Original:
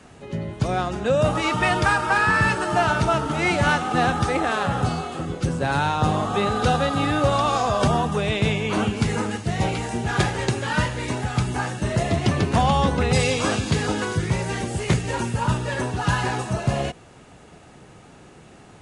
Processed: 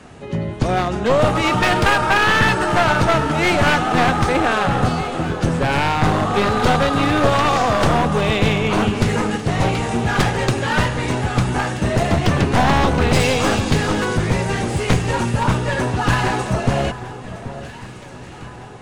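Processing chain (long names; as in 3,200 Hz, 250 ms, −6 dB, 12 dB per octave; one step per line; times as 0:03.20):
wavefolder on the positive side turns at −19.5 dBFS
high-shelf EQ 5,400 Hz −5 dB
delay that swaps between a low-pass and a high-pass 781 ms, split 1,600 Hz, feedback 68%, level −13 dB
level +6 dB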